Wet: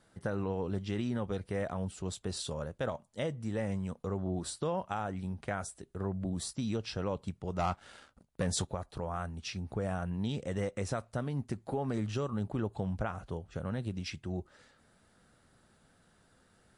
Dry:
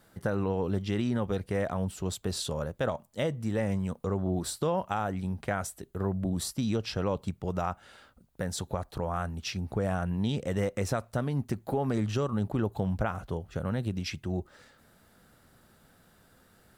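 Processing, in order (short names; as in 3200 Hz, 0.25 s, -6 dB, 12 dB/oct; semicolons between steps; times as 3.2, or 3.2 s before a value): 7.59–8.65 sample leveller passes 2; gain -4.5 dB; MP3 48 kbps 24000 Hz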